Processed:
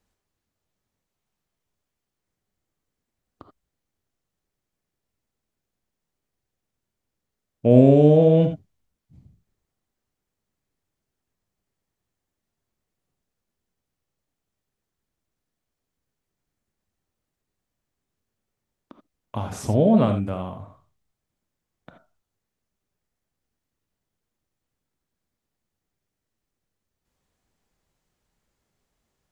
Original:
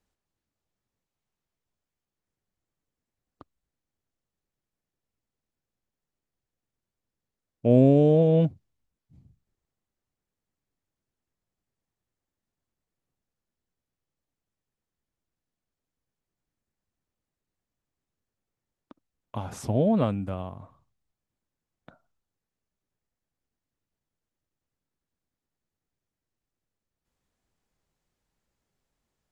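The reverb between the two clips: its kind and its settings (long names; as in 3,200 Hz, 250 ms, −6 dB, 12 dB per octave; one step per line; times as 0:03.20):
reverb whose tail is shaped and stops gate 100 ms rising, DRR 6.5 dB
level +4 dB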